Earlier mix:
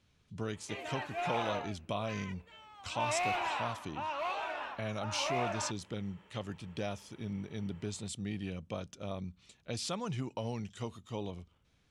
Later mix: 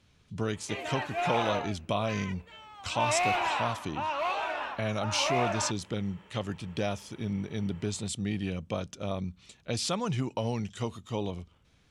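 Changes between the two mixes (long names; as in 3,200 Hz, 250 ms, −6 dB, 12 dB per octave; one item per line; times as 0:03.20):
speech +6.5 dB
background +5.5 dB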